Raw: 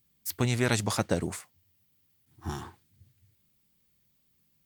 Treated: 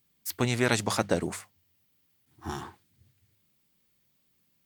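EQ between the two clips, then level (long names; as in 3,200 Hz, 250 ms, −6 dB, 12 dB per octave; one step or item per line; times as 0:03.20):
low-shelf EQ 140 Hz −9 dB
high-shelf EQ 5,100 Hz −4 dB
mains-hum notches 50/100/150/200 Hz
+3.0 dB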